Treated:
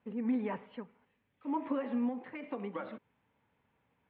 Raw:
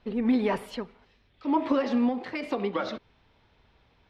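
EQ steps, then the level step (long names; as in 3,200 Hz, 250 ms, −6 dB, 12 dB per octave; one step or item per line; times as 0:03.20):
high-frequency loss of the air 440 metres
loudspeaker in its box 150–3,300 Hz, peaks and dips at 370 Hz −8 dB, 670 Hz −6 dB, 1,300 Hz −3 dB
−6.0 dB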